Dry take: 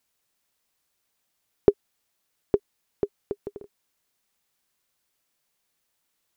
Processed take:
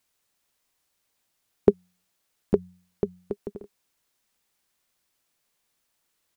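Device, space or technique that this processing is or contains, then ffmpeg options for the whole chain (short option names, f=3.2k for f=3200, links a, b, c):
octave pedal: -filter_complex "[0:a]asplit=2[a][b];[b]asetrate=22050,aresample=44100,atempo=2,volume=-7dB[c];[a][c]amix=inputs=2:normalize=0,asettb=1/sr,asplit=3[d][e][f];[d]atrim=end=1.704[g];[e]atrim=start=1.7:end=3.33,asetpts=PTS-STARTPTS,afade=t=in:d=0.004:c=qsin,afade=t=out:st=1.626:d=0.004:c=qsin,bandreject=f=90.33:t=h:w=4,bandreject=f=180.66:t=h:w=4[h];[f]atrim=start=3.326[i];[g][h]acrossfade=d=0.004:c1=hsin:c2=qsin[j];[j][i]acrossfade=d=0.004:c1=qsin:c2=hsin"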